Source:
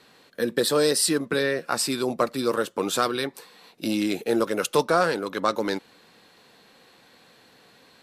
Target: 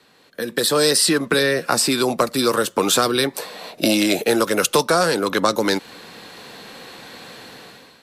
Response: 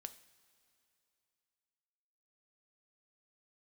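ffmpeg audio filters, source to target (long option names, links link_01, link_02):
-filter_complex "[0:a]acrossover=split=180|720|4600[link_01][link_02][link_03][link_04];[link_01]acompressor=threshold=-48dB:ratio=4[link_05];[link_02]acompressor=threshold=-35dB:ratio=4[link_06];[link_03]acompressor=threshold=-36dB:ratio=4[link_07];[link_04]acompressor=threshold=-34dB:ratio=4[link_08];[link_05][link_06][link_07][link_08]amix=inputs=4:normalize=0,asettb=1/sr,asplit=3[link_09][link_10][link_11];[link_09]atrim=end=3.364[link_12];[link_10]atrim=start=3.36:end=4.24,asetpts=PTS-STARTPTS,afade=type=in:duration=0.004:curve=qsin,afade=type=out:start_time=0.876:duration=0.004:curve=qsin,equalizer=frequency=620:width=3.5:gain=13[link_13];[link_11]atrim=start=4.236[link_14];[link_12][link_13]acrossfade=duration=0.004:curve1=hsin:curve2=qsin[link_15];[link_15][link_14]acrossfade=duration=0.004:curve1=qsin:curve2=hsin,dynaudnorm=framelen=160:gausssize=7:maxgain=16dB"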